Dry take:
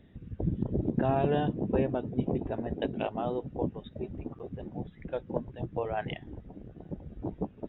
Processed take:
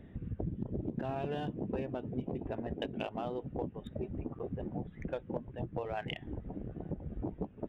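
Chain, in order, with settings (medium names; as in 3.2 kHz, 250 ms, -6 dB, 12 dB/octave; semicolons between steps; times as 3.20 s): local Wiener filter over 9 samples; dynamic bell 3.1 kHz, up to +7 dB, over -54 dBFS, Q 0.91; compression 5:1, threshold -40 dBFS, peak gain reduction 16 dB; trim +5 dB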